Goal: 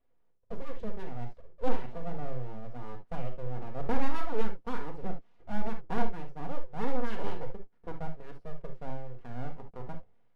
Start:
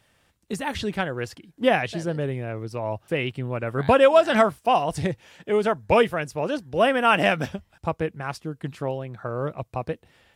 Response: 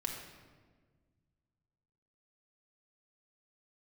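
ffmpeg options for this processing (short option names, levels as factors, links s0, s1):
-filter_complex "[0:a]bandpass=f=270:t=q:w=2.8:csg=0,aeval=exprs='abs(val(0))':c=same[s0];[1:a]atrim=start_sample=2205,atrim=end_sample=3528[s1];[s0][s1]afir=irnorm=-1:irlink=0,volume=0.891"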